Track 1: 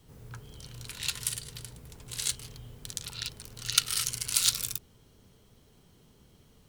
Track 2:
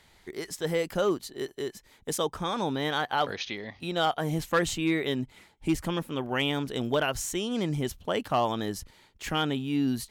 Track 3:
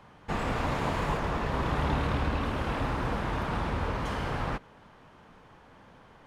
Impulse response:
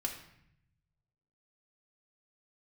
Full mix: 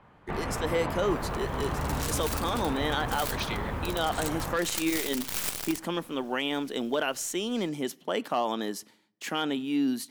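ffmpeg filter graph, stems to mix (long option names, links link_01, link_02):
-filter_complex "[0:a]aeval=exprs='abs(val(0))':channel_layout=same,tiltshelf=frequency=970:gain=-5.5,aeval=exprs='(mod(2.66*val(0)+1,2)-1)/2.66':channel_layout=same,adelay=1000,volume=0.5dB[link_01];[1:a]highpass=frequency=200:width=0.5412,highpass=frequency=200:width=1.3066,agate=range=-33dB:threshold=-48dB:ratio=3:detection=peak,volume=-0.5dB,asplit=2[link_02][link_03];[link_03]volume=-19dB[link_04];[2:a]lowpass=2800,volume=-2.5dB[link_05];[3:a]atrim=start_sample=2205[link_06];[link_04][link_06]afir=irnorm=-1:irlink=0[link_07];[link_01][link_02][link_05][link_07]amix=inputs=4:normalize=0,alimiter=limit=-17dB:level=0:latency=1:release=33"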